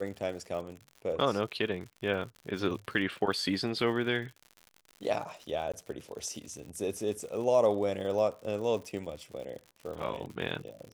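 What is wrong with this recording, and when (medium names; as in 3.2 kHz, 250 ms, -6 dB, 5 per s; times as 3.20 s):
crackle 91 per s -40 dBFS
5.72–5.74 s: dropout 16 ms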